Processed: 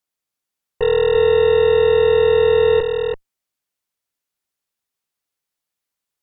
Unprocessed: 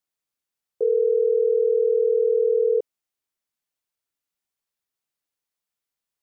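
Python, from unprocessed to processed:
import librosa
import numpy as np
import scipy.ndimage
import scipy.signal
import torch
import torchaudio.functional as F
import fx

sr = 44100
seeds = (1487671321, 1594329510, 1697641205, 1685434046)

y = fx.cheby_harmonics(x, sr, harmonics=(2, 3, 4, 8), levels_db=(-28, -23, -21, -18), full_scale_db=-13.5)
y = y + 10.0 ** (-5.0 / 20.0) * np.pad(y, (int(336 * sr / 1000.0), 0))[:len(y)]
y = y * 10.0 ** (4.5 / 20.0)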